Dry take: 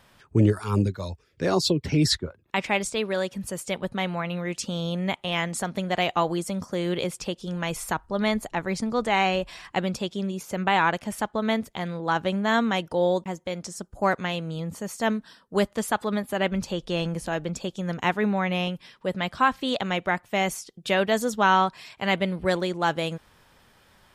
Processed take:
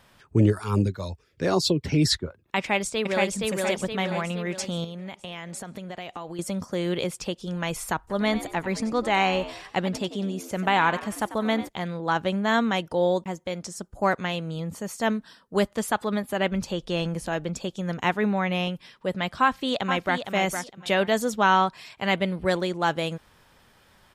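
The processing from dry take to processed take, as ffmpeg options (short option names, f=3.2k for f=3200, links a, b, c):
-filter_complex "[0:a]asplit=2[a][b];[b]afade=t=in:st=2.58:d=0.01,afade=t=out:st=3.37:d=0.01,aecho=0:1:470|940|1410|1880|2350|2820|3290:0.841395|0.420698|0.210349|0.105174|0.0525872|0.0262936|0.0131468[c];[a][c]amix=inputs=2:normalize=0,asettb=1/sr,asplit=3[d][e][f];[d]atrim=end=4.844[g];[e]atrim=start=4.84:end=6.39,asetpts=PTS-STARTPTS,afade=t=in:d=0.004:c=qsin,afade=t=out:st=1.546:d=0.004:c=qsin,acompressor=threshold=-33dB:ratio=6:attack=3.2:release=140:knee=1:detection=peak[h];[f]atrim=start=6.386[i];[g][h]acrossfade=d=0.004:c1=hsin:c2=qsin[j];[j][i]acrossfade=d=0.004:c1=qsin:c2=hsin,asplit=3[k][l][m];[k]afade=t=out:st=8.07:d=0.02[n];[l]asplit=5[o][p][q][r][s];[p]adelay=93,afreqshift=72,volume=-13.5dB[t];[q]adelay=186,afreqshift=144,volume=-21.2dB[u];[r]adelay=279,afreqshift=216,volume=-29dB[v];[s]adelay=372,afreqshift=288,volume=-36.7dB[w];[o][t][u][v][w]amix=inputs=5:normalize=0,afade=t=in:st=8.07:d=0.02,afade=t=out:st=11.67:d=0.02[x];[m]afade=t=in:st=11.67:d=0.02[y];[n][x][y]amix=inputs=3:normalize=0,asplit=2[z][aa];[aa]afade=t=in:st=19.42:d=0.01,afade=t=out:st=20.19:d=0.01,aecho=0:1:460|920|1380:0.421697|0.0843393|0.0168679[ab];[z][ab]amix=inputs=2:normalize=0"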